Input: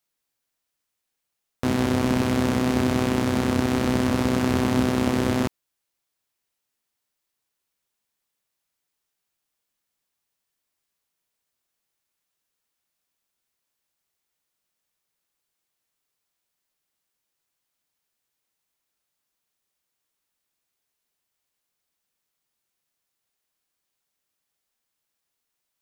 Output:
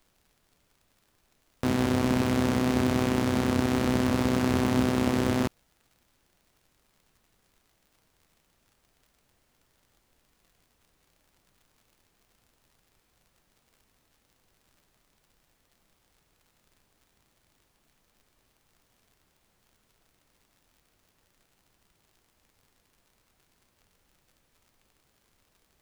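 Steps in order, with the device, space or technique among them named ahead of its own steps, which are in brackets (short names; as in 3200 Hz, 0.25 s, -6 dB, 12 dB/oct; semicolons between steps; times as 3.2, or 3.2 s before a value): record under a worn stylus (tracing distortion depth 0.027 ms; crackle; pink noise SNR 37 dB); gain -3 dB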